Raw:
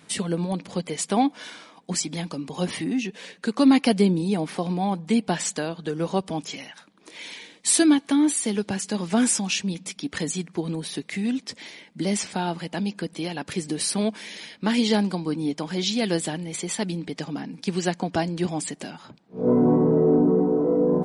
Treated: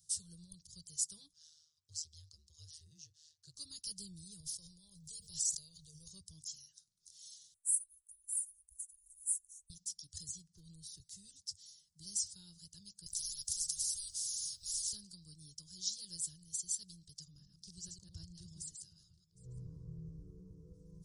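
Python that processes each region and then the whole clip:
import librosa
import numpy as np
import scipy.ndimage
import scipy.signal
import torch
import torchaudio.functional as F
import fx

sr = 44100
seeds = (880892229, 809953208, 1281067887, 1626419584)

y = fx.chain(x, sr, fx.block_float(bits=7),
    fx.bandpass_edges(low_hz=370.0, high_hz=5200.0),
    fx.ring_mod(carrier_hz=78.0), at=(1.33, 3.55))
y = fx.chain(y, sr, fx.fixed_phaser(hz=620.0, stages=4),
    fx.sustainer(db_per_s=44.0), at=(4.4, 6.08))
y = fx.chain(y, sr, fx.cheby2_bandstop(low_hz=110.0, high_hz=5300.0, order=4, stop_db=40),
    fx.peak_eq(hz=130.0, db=-9.0, octaves=2.6), at=(7.54, 9.7))
y = fx.chain(y, sr, fx.lowpass(hz=3600.0, slope=6),
    fx.clip_hard(threshold_db=-19.5),
    fx.band_squash(depth_pct=40), at=(10.28, 11.0))
y = fx.chain(y, sr, fx.comb(ms=6.1, depth=0.41),
    fx.spectral_comp(ratio=10.0), at=(13.06, 14.93))
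y = fx.chain(y, sr, fx.reverse_delay(ms=105, wet_db=-4),
    fx.high_shelf(hz=3500.0, db=-9.0),
    fx.echo_single(ms=762, db=-23.0), at=(17.25, 20.74))
y = scipy.signal.sosfilt(scipy.signal.ellip(3, 1.0, 40, [100.0, 5400.0], 'bandstop', fs=sr, output='sos'), y)
y = fx.peak_eq(y, sr, hz=110.0, db=-12.5, octaves=0.2)
y = y * librosa.db_to_amplitude(-5.0)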